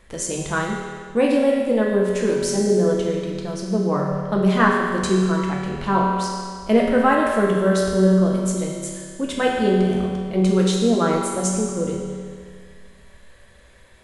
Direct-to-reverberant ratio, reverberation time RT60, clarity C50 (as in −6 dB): −2.5 dB, 2.0 s, 0.5 dB